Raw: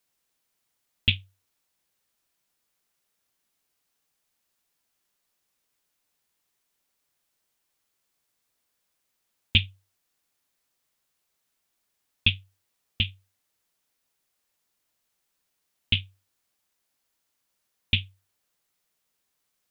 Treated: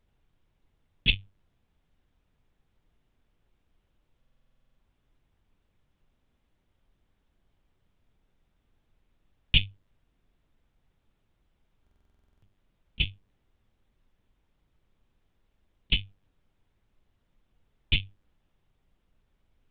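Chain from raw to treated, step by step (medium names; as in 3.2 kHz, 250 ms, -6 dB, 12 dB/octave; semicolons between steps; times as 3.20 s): LPC vocoder at 8 kHz pitch kept; added noise brown -69 dBFS; buffer glitch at 4.18/11.82 s, samples 2048, times 12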